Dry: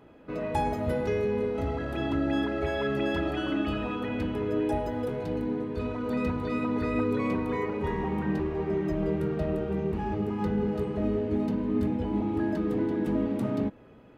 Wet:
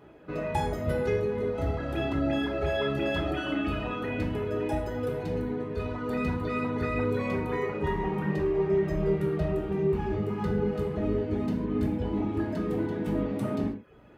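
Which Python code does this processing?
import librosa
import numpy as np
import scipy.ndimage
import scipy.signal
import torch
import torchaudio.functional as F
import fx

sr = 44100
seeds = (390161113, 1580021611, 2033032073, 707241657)

y = fx.dereverb_blind(x, sr, rt60_s=0.57)
y = fx.rev_gated(y, sr, seeds[0], gate_ms=170, shape='falling', drr_db=0.5)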